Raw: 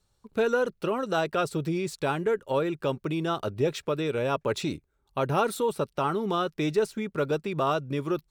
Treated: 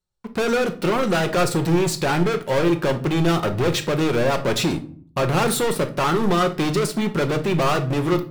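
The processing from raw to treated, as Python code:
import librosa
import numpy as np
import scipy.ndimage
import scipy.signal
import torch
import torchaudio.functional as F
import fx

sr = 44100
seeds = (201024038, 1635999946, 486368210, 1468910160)

y = fx.leveller(x, sr, passes=5)
y = fx.room_shoebox(y, sr, seeds[0], volume_m3=470.0, walls='furnished', distance_m=0.94)
y = y * librosa.db_to_amplitude(-4.0)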